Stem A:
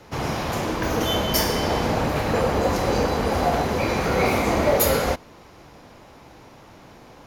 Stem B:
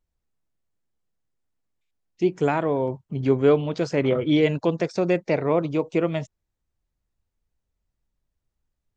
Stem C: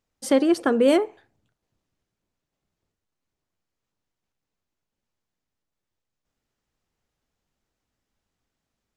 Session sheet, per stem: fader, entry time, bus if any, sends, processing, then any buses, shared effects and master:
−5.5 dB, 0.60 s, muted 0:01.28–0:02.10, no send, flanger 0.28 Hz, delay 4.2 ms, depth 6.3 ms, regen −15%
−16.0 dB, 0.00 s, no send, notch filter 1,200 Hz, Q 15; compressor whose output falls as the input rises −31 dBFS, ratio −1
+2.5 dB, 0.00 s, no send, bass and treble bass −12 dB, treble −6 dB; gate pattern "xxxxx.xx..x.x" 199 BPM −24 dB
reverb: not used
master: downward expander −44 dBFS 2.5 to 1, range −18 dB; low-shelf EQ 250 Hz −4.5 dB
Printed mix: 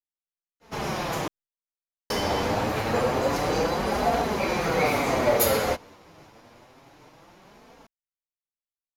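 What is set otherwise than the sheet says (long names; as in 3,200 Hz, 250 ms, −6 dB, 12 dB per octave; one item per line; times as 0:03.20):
stem A −5.5 dB → +1.5 dB
stem B −16.0 dB → −25.5 dB
stem C: muted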